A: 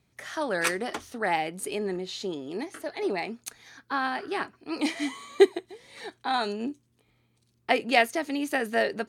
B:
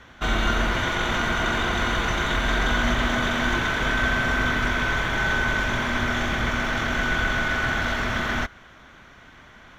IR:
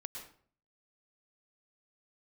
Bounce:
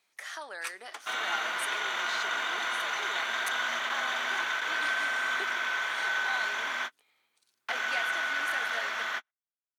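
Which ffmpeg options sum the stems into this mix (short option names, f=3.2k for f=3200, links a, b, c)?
-filter_complex "[0:a]acompressor=threshold=-40dB:ratio=2.5,volume=1.5dB,asplit=3[a][b][c];[b]volume=-20.5dB[d];[1:a]adelay=850,volume=-5dB[e];[c]apad=whole_len=469156[f];[e][f]sidechaingate=range=-55dB:threshold=-57dB:ratio=16:detection=peak[g];[2:a]atrim=start_sample=2205[h];[d][h]afir=irnorm=-1:irlink=0[i];[a][g][i]amix=inputs=3:normalize=0,highpass=870"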